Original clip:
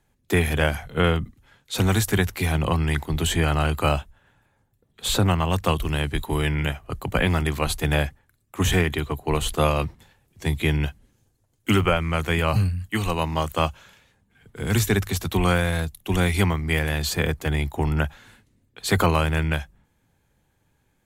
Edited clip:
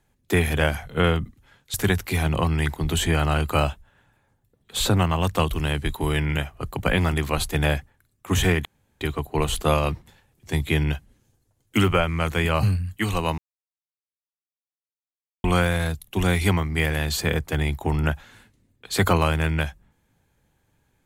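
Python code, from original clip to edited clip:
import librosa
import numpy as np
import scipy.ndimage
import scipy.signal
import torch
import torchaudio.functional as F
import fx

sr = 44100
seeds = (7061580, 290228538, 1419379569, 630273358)

y = fx.edit(x, sr, fx.cut(start_s=1.74, length_s=0.29),
    fx.insert_room_tone(at_s=8.94, length_s=0.36),
    fx.silence(start_s=13.31, length_s=2.06), tone=tone)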